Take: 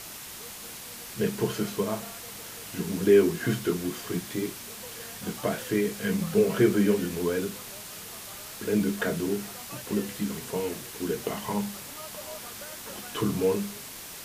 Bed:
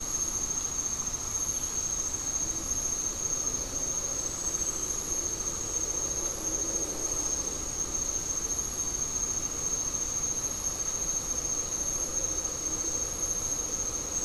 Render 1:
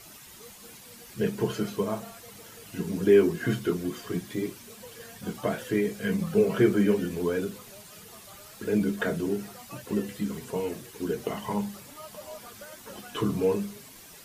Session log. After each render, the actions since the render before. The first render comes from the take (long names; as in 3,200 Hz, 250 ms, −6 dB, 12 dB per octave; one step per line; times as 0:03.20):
broadband denoise 10 dB, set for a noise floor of −42 dBFS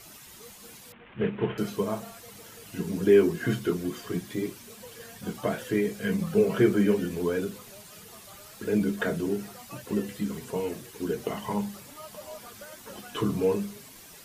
0:00.92–0:01.58: variable-slope delta modulation 16 kbit/s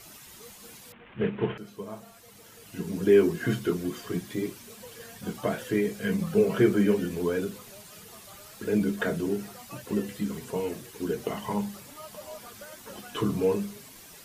0:01.58–0:03.25: fade in, from −14.5 dB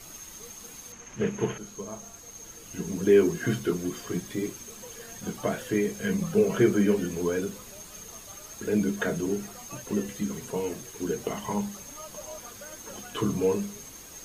mix in bed −15 dB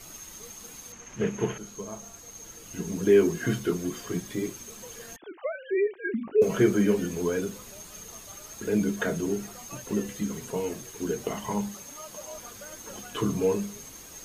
0:05.16–0:06.42: three sine waves on the formant tracks
0:11.74–0:12.34: low-shelf EQ 89 Hz −11 dB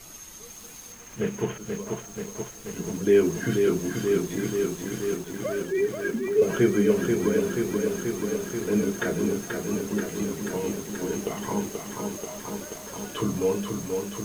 feedback echo at a low word length 483 ms, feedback 80%, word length 8 bits, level −4.5 dB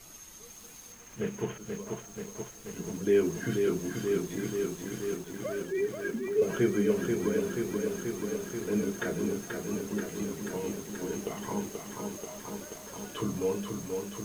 level −5.5 dB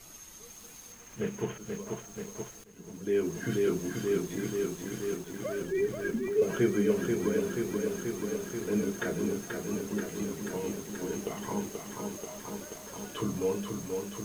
0:02.64–0:03.55: fade in, from −17 dB
0:05.62–0:06.30: low-shelf EQ 130 Hz +10.5 dB